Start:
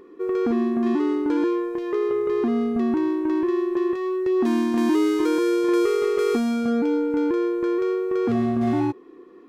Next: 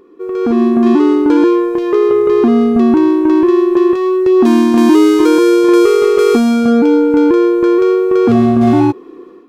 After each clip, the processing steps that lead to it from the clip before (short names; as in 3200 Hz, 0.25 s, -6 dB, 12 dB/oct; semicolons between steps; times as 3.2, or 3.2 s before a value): bell 1900 Hz -6.5 dB 0.25 oct; AGC gain up to 11 dB; gain +2 dB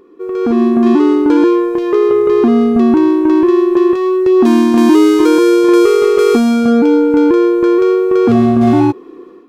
nothing audible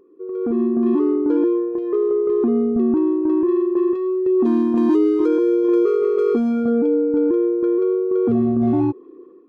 formant sharpening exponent 1.5; gain -8 dB